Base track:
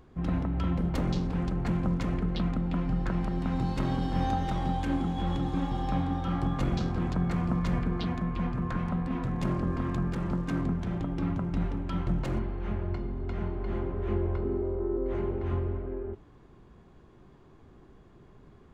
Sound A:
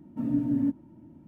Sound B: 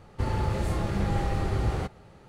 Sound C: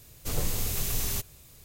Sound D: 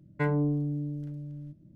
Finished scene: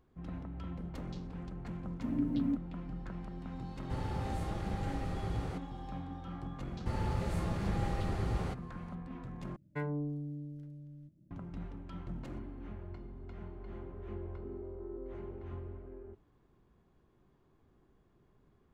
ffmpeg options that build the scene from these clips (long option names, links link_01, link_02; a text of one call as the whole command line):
ffmpeg -i bed.wav -i cue0.wav -i cue1.wav -i cue2.wav -i cue3.wav -filter_complex "[1:a]asplit=2[link_01][link_02];[2:a]asplit=2[link_03][link_04];[0:a]volume=-13.5dB[link_05];[link_02]acompressor=threshold=-36dB:ratio=6:attack=3.2:release=140:knee=1:detection=peak[link_06];[link_05]asplit=2[link_07][link_08];[link_07]atrim=end=9.564[link_09];[4:a]atrim=end=1.75,asetpts=PTS-STARTPTS,volume=-9.5dB[link_10];[link_08]atrim=start=11.306[link_11];[link_01]atrim=end=1.27,asetpts=PTS-STARTPTS,volume=-6.5dB,afade=type=in:duration=0.004:curve=hsin,afade=type=out:start_time=1.266:duration=0.004:curve=hsin,adelay=1850[link_12];[link_03]atrim=end=2.28,asetpts=PTS-STARTPTS,volume=-10.5dB,afade=type=in:duration=0.004:curve=hsin,afade=type=out:start_time=2.276:duration=0.004:curve=hsin,adelay=3710[link_13];[link_04]atrim=end=2.28,asetpts=PTS-STARTPTS,volume=-7.5dB,afade=type=in:duration=0.004:curve=hsin,afade=type=out:start_time=2.276:duration=0.004:curve=hsin,adelay=6670[link_14];[link_06]atrim=end=1.27,asetpts=PTS-STARTPTS,volume=-13dB,afade=type=in:duration=0.004:curve=hsin,afade=type=out:start_time=1.266:duration=0.004:curve=hsin,adelay=11980[link_15];[link_09][link_10]acrossfade=duration=0.004:curve1=hsin:curve2=hsin[link_16];[link_16][link_11]acrossfade=duration=0.004:curve1=hsin:curve2=hsin[link_17];[link_17][link_12][link_13][link_14][link_15]amix=inputs=5:normalize=0" out.wav